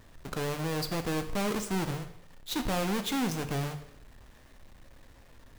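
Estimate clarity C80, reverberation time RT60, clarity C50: 13.5 dB, 0.75 s, 11.0 dB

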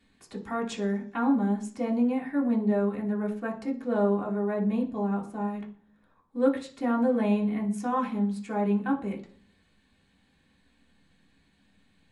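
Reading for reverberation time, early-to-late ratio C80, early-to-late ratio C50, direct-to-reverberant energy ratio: 0.50 s, 16.5 dB, 11.5 dB, -3.5 dB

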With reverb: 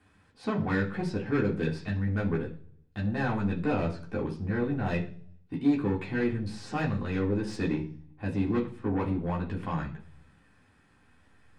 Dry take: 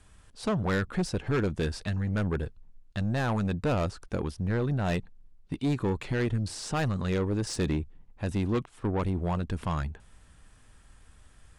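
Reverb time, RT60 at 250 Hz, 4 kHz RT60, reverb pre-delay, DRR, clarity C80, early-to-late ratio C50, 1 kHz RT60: 0.45 s, 0.70 s, 0.55 s, 3 ms, -4.0 dB, 16.0 dB, 11.0 dB, 0.40 s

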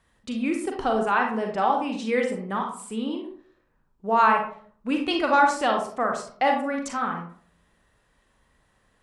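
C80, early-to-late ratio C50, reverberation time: 9.5 dB, 5.0 dB, 0.50 s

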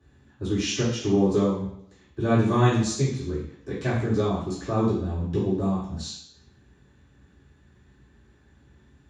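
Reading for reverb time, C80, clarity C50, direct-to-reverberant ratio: 0.70 s, 7.0 dB, 3.0 dB, -11.5 dB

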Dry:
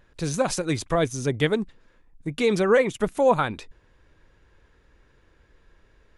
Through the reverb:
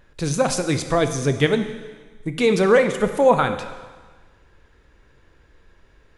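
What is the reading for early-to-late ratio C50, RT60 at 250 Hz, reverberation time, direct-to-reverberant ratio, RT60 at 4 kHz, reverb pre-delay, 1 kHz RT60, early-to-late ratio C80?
9.5 dB, 1.4 s, 1.4 s, 8.0 dB, 1.4 s, 13 ms, 1.5 s, 11.0 dB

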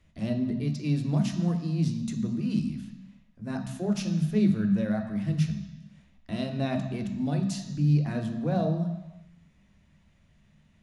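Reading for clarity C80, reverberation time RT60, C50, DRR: 9.5 dB, no single decay rate, 7.5 dB, 4.0 dB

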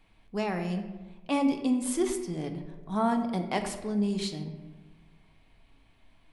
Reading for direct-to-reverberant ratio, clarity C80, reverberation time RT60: 5.0 dB, 10.0 dB, 1.2 s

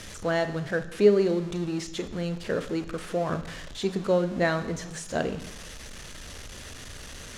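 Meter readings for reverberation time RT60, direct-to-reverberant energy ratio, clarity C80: 1.0 s, 10.0 dB, 15.0 dB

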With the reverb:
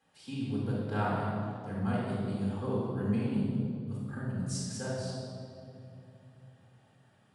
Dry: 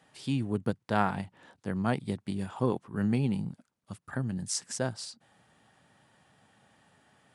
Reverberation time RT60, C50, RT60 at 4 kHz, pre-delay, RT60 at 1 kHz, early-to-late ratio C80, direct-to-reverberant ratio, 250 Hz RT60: 2.8 s, -2.5 dB, 1.7 s, 4 ms, 2.3 s, 0.0 dB, -7.0 dB, 3.6 s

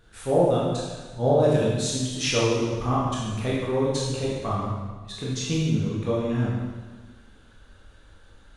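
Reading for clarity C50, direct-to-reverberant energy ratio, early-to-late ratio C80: -1.5 dB, -6.5 dB, 1.5 dB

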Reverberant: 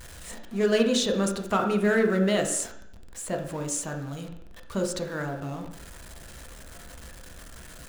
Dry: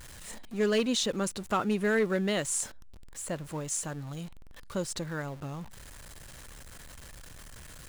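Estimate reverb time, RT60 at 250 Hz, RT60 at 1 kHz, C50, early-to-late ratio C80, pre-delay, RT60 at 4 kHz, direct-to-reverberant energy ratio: 0.70 s, 0.75 s, 0.70 s, 7.5 dB, 10.5 dB, 3 ms, 0.70 s, 2.0 dB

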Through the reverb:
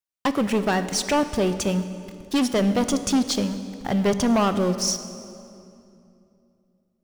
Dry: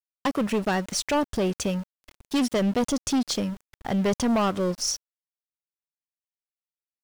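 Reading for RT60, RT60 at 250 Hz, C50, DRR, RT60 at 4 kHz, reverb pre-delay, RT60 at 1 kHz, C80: 2.7 s, 3.4 s, 11.0 dB, 10.0 dB, 2.0 s, 13 ms, 2.5 s, 12.0 dB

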